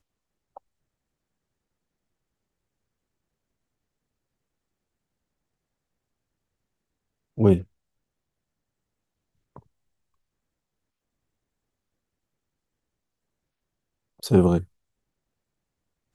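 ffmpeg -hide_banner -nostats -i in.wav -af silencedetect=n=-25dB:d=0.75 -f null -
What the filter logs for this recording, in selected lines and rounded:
silence_start: 0.00
silence_end: 7.40 | silence_duration: 7.40
silence_start: 7.58
silence_end: 14.24 | silence_duration: 6.65
silence_start: 14.58
silence_end: 16.14 | silence_duration: 1.56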